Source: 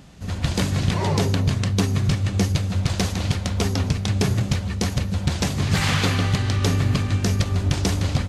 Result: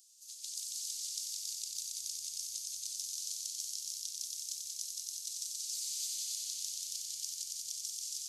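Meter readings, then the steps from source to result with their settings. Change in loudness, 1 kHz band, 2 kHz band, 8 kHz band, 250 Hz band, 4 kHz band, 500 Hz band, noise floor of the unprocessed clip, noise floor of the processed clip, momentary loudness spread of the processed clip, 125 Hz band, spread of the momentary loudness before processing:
-15.5 dB, under -40 dB, -35.5 dB, -2.0 dB, under -40 dB, -11.0 dB, under -40 dB, -29 dBFS, -48 dBFS, 3 LU, under -40 dB, 4 LU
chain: inverse Chebyshev high-pass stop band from 1.3 kHz, stop band 70 dB; compression 6:1, threshold -40 dBFS, peak gain reduction 12 dB; on a send: multi-head delay 92 ms, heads all three, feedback 74%, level -6 dB

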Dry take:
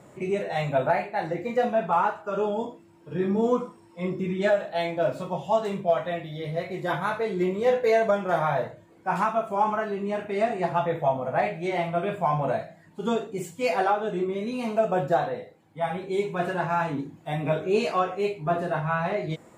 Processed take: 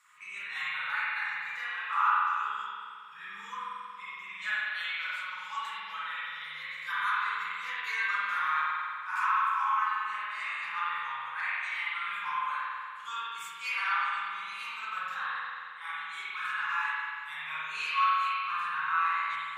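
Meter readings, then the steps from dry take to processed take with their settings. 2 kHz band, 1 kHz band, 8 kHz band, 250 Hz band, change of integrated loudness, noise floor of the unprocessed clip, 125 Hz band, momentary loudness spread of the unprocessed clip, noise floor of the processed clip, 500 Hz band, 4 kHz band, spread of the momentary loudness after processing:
+3.5 dB, -3.5 dB, no reading, under -35 dB, -5.0 dB, -54 dBFS, under -35 dB, 8 LU, -44 dBFS, under -35 dB, +2.0 dB, 12 LU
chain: elliptic high-pass 1.1 kHz, stop band 40 dB; spring tank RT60 2.2 s, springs 45 ms, chirp 75 ms, DRR -8.5 dB; trim -4.5 dB

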